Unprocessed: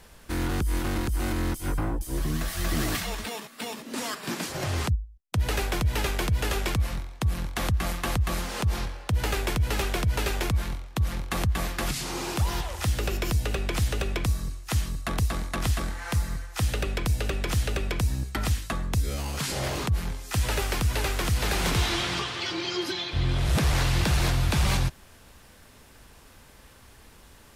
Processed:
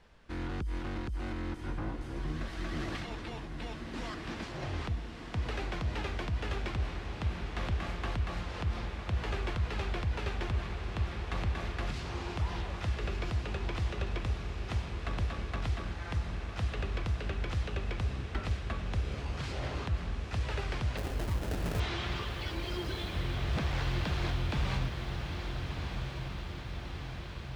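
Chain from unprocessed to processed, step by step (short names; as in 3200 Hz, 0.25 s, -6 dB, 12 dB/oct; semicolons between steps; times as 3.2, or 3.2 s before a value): LPF 3800 Hz 12 dB/oct; 20.97–21.8 sample-rate reducer 1100 Hz, jitter 20%; on a send: diffused feedback echo 1.342 s, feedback 66%, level -5.5 dB; on the sum: gain -9 dB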